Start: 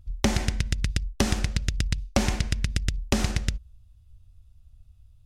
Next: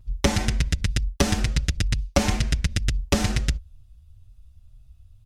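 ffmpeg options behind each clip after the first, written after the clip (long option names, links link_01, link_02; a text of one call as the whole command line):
ffmpeg -i in.wav -filter_complex "[0:a]asplit=2[link_01][link_02];[link_02]adelay=6,afreqshift=2.1[link_03];[link_01][link_03]amix=inputs=2:normalize=1,volume=6dB" out.wav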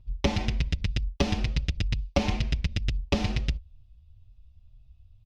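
ffmpeg -i in.wav -af "firequalizer=gain_entry='entry(950,0);entry(1500,-8);entry(2500,2);entry(5100,-4);entry(8100,-19)':delay=0.05:min_phase=1,volume=-4dB" out.wav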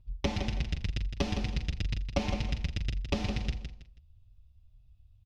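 ffmpeg -i in.wav -af "aecho=1:1:162|324|486:0.398|0.107|0.029,volume=-5.5dB" out.wav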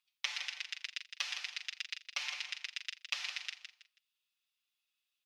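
ffmpeg -i in.wav -af "highpass=frequency=1400:width=0.5412,highpass=frequency=1400:width=1.3066,volume=2.5dB" out.wav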